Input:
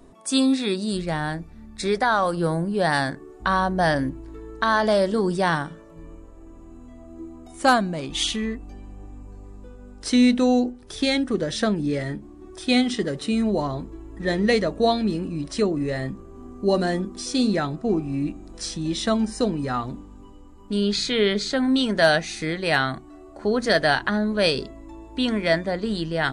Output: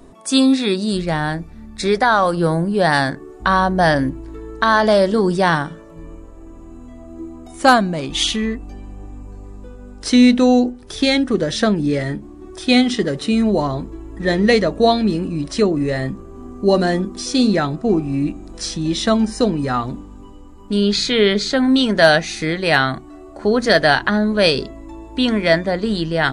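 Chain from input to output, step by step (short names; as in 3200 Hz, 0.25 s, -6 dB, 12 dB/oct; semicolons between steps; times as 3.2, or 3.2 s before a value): dynamic EQ 8500 Hz, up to -4 dB, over -53 dBFS, Q 3.3; gain +6 dB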